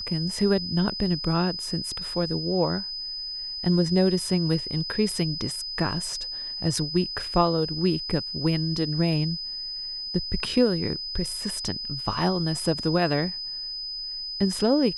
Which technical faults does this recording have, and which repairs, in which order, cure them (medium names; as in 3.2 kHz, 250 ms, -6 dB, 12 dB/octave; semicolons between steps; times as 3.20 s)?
whine 5 kHz -31 dBFS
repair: band-stop 5 kHz, Q 30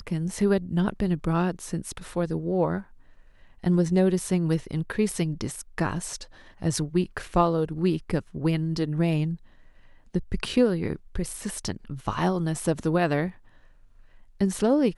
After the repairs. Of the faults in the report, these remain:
nothing left